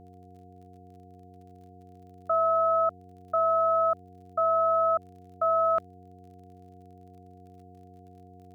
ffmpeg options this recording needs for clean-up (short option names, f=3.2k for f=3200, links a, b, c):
-af "adeclick=t=4,bandreject=f=92.4:t=h:w=4,bandreject=f=184.8:t=h:w=4,bandreject=f=277.2:t=h:w=4,bandreject=f=369.6:t=h:w=4,bandreject=f=462:t=h:w=4,bandreject=f=710:w=30"